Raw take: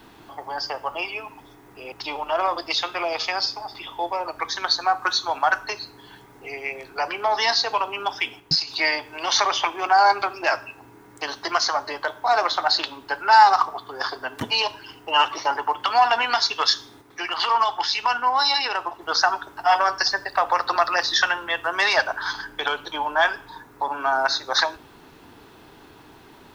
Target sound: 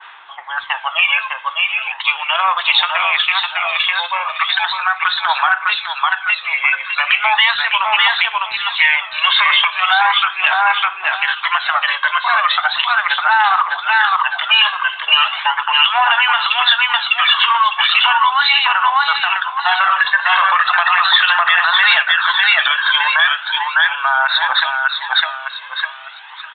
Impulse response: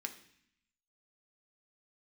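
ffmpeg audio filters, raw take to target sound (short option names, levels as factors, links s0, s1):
-filter_complex "[0:a]asplit=2[s0][s1];[s1]aecho=0:1:604|1208|1812|2416:0.631|0.196|0.0606|0.0188[s2];[s0][s2]amix=inputs=2:normalize=0,asettb=1/sr,asplit=3[s3][s4][s5];[s3]atrim=end=19.894[s6];[s4]atrim=start=19.89:end=22.03,asetpts=PTS-STARTPTS,afade=t=in:d=0.004:c=qsin,afade=t=out:st=2.136:d=0.004:c=qsin,acontrast=77[s7];[s5]atrim=start=22.026[s8];[s6][s7]acrossfade=d=0.004:c1=hsin:c2=qsin[s9];[s9][s8]acrossfade=d=0.004:c1=qsin:c2=hsin,highpass=f=1100:w=0.5412,highpass=f=1100:w=1.3066,aphaser=in_gain=1:out_gain=1:delay=1.9:decay=0.49:speed=0.37:type=sinusoidal,asettb=1/sr,asplit=3[s10][s11][s12];[s10]atrim=end=6.844[s13];[s11]atrim=start=6.84:end=7.24,asetpts=PTS-STARTPTS,afade=t=in:d=0.004:c=qsin,afade=t=out:st=0.396:d=0.004:c=qsin,aemphasis=mode=production:type=riaa[s14];[s12]atrim=start=7.236[s15];[s13][s14]acrossfade=d=0.004:c1=hsin:c2=qsin[s16];[s16][s15]acrossfade=d=0.004:c1=qsin:c2=hsin,asplit=2[s17][s18];[s18]acompressor=threshold=0.0447:ratio=6,volume=1.12[s19];[s17][s19]amix=inputs=2:normalize=0,aresample=8000,aresample=44100,alimiter=level_in=3.76:limit=0.891:release=50:level=0:latency=1,adynamicequalizer=threshold=0.1:dfrequency=1900:dqfactor=0.7:tfrequency=1900:tqfactor=0.7:attack=5:release=100:ratio=0.375:range=2.5:mode=boostabove:tftype=highshelf,volume=0.596"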